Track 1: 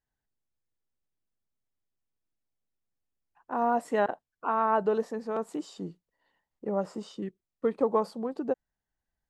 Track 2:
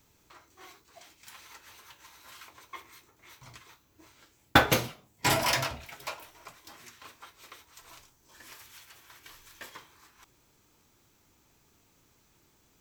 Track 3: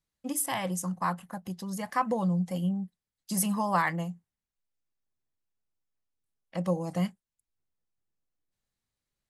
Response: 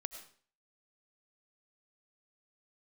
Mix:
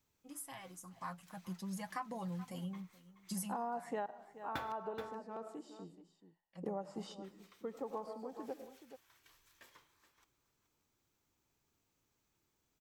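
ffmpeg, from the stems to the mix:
-filter_complex "[0:a]equalizer=frequency=820:width_type=o:width=0.27:gain=7.5,volume=-4.5dB,asplit=3[link_01][link_02][link_03];[link_02]volume=-8dB[link_04];[link_03]volume=-22.5dB[link_05];[1:a]volume=-18dB,asplit=3[link_06][link_07][link_08];[link_06]atrim=end=4.72,asetpts=PTS-STARTPTS,afade=type=out:start_time=4.716:duration=0.004:curve=hsin[link_09];[link_07]atrim=start=4.72:end=7.24,asetpts=PTS-STARTPTS,volume=0[link_10];[link_08]atrim=start=7.24,asetpts=PTS-STARTPTS,afade=type=in:duration=0.004:curve=hsin[link_11];[link_09][link_10][link_11]concat=n=3:v=0:a=1,asplit=3[link_12][link_13][link_14];[link_13]volume=-7dB[link_15];[link_14]volume=-11dB[link_16];[2:a]equalizer=frequency=470:width=0.75:gain=-4,flanger=delay=5.2:depth=3.3:regen=20:speed=0.61:shape=triangular,volume=-4dB,afade=type=in:start_time=0.8:duration=0.77:silence=0.334965,afade=type=out:start_time=3.45:duration=0.27:silence=0.251189,asplit=3[link_17][link_18][link_19];[link_18]volume=-20dB[link_20];[link_19]apad=whole_len=410071[link_21];[link_01][link_21]sidechaingate=range=-33dB:threshold=-58dB:ratio=16:detection=peak[link_22];[3:a]atrim=start_sample=2205[link_23];[link_04][link_15]amix=inputs=2:normalize=0[link_24];[link_24][link_23]afir=irnorm=-1:irlink=0[link_25];[link_05][link_16][link_20]amix=inputs=3:normalize=0,aecho=0:1:426:1[link_26];[link_22][link_12][link_17][link_25][link_26]amix=inputs=5:normalize=0,acompressor=threshold=-37dB:ratio=8"

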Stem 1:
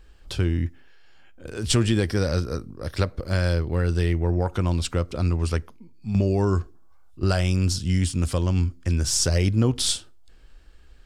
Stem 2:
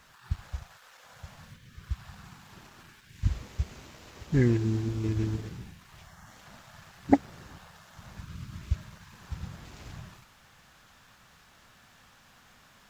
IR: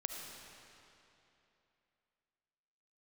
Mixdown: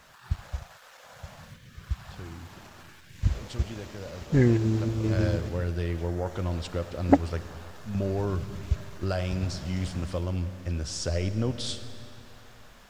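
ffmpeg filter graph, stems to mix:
-filter_complex "[0:a]lowpass=5700,adelay=1800,volume=-11.5dB,afade=type=in:start_time=4.78:duration=0.49:silence=0.281838,asplit=2[link_01][link_02];[link_02]volume=-4.5dB[link_03];[1:a]acontrast=81,volume=-4.5dB[link_04];[2:a]atrim=start_sample=2205[link_05];[link_03][link_05]afir=irnorm=-1:irlink=0[link_06];[link_01][link_04][link_06]amix=inputs=3:normalize=0,equalizer=frequency=590:width=2.2:gain=6"

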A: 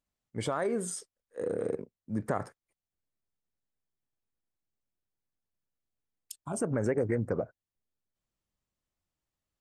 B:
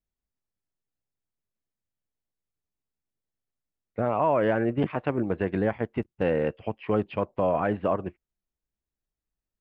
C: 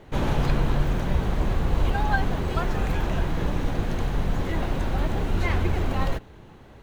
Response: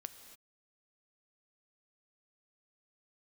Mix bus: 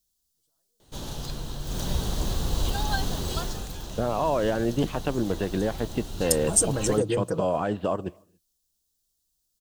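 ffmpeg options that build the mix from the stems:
-filter_complex "[0:a]aecho=1:1:6.2:0.73,volume=1dB[link_01];[1:a]alimiter=limit=-18dB:level=0:latency=1:release=237,volume=2dB,asplit=3[link_02][link_03][link_04];[link_03]volume=-12.5dB[link_05];[2:a]adelay=800,volume=-4dB,afade=type=in:start_time=1.63:duration=0.2:silence=0.375837,afade=type=out:start_time=3.33:duration=0.35:silence=0.375837[link_06];[link_04]apad=whole_len=423684[link_07];[link_01][link_07]sidechaingate=range=-56dB:threshold=-48dB:ratio=16:detection=peak[link_08];[3:a]atrim=start_sample=2205[link_09];[link_05][link_09]afir=irnorm=-1:irlink=0[link_10];[link_08][link_02][link_06][link_10]amix=inputs=4:normalize=0,highshelf=frequency=3000:gain=-9,aexciter=amount=13.2:drive=5.6:freq=3400"

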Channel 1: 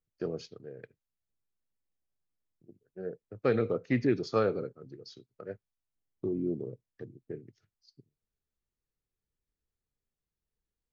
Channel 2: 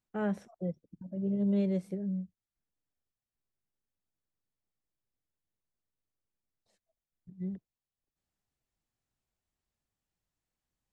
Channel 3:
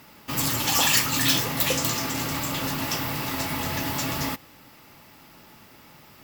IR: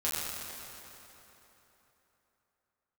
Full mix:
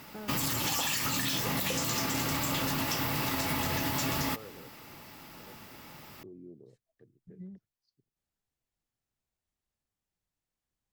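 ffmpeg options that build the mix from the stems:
-filter_complex "[0:a]volume=-16.5dB[link_01];[1:a]volume=-1.5dB[link_02];[2:a]alimiter=limit=-18.5dB:level=0:latency=1:release=100,volume=1dB[link_03];[link_01][link_02]amix=inputs=2:normalize=0,volume=31dB,asoftclip=hard,volume=-31dB,acompressor=threshold=-42dB:ratio=10,volume=0dB[link_04];[link_03][link_04]amix=inputs=2:normalize=0,acompressor=threshold=-27dB:ratio=6"

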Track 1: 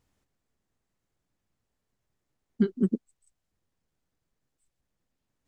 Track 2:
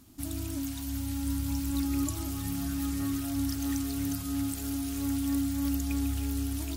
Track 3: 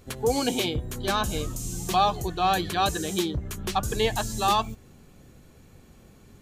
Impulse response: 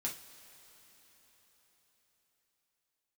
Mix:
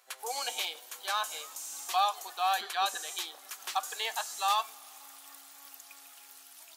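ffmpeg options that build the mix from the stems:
-filter_complex "[0:a]volume=-1dB,asplit=2[link_01][link_02];[1:a]volume=-9.5dB[link_03];[2:a]volume=-5.5dB,asplit=2[link_04][link_05];[link_05]volume=-12dB[link_06];[link_02]apad=whole_len=298500[link_07];[link_03][link_07]sidechaincompress=threshold=-35dB:ratio=8:attack=16:release=584[link_08];[3:a]atrim=start_sample=2205[link_09];[link_06][link_09]afir=irnorm=-1:irlink=0[link_10];[link_01][link_08][link_04][link_10]amix=inputs=4:normalize=0,highpass=frequency=730:width=0.5412,highpass=frequency=730:width=1.3066"

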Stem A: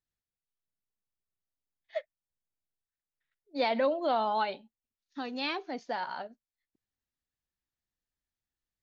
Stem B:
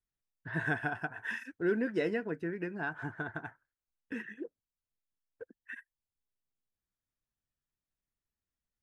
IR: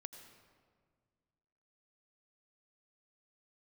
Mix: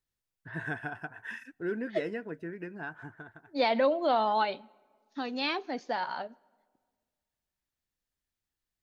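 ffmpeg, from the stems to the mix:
-filter_complex "[0:a]volume=1.5dB,asplit=2[link_01][link_02];[link_02]volume=-16.5dB[link_03];[1:a]volume=-3.5dB,afade=type=out:start_time=2.85:duration=0.6:silence=0.237137,asplit=2[link_04][link_05];[link_05]volume=-23.5dB[link_06];[2:a]atrim=start_sample=2205[link_07];[link_03][link_06]amix=inputs=2:normalize=0[link_08];[link_08][link_07]afir=irnorm=-1:irlink=0[link_09];[link_01][link_04][link_09]amix=inputs=3:normalize=0"

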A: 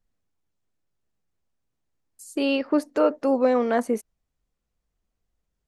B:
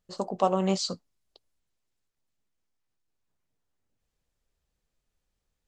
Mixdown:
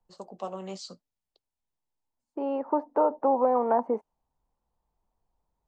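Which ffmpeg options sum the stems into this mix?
ffmpeg -i stem1.wav -i stem2.wav -filter_complex "[0:a]lowpass=frequency=910:width_type=q:width=6.6,volume=-1.5dB[link_01];[1:a]flanger=delay=0.4:depth=7.1:regen=-66:speed=0.76:shape=sinusoidal,volume=-7dB,asplit=2[link_02][link_03];[link_03]apad=whole_len=250193[link_04];[link_01][link_04]sidechaincompress=threshold=-55dB:ratio=10:attack=11:release=1490[link_05];[link_05][link_02]amix=inputs=2:normalize=0,acrossover=split=160|420[link_06][link_07][link_08];[link_06]acompressor=threshold=-60dB:ratio=4[link_09];[link_07]acompressor=threshold=-32dB:ratio=4[link_10];[link_08]acompressor=threshold=-22dB:ratio=4[link_11];[link_09][link_10][link_11]amix=inputs=3:normalize=0" out.wav

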